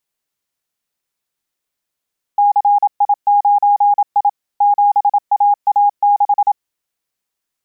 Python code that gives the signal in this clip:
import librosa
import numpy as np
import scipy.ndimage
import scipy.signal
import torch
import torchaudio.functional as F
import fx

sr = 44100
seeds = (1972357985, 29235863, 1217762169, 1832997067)

y = fx.morse(sr, text='CI9I 7AA6', wpm=27, hz=818.0, level_db=-8.0)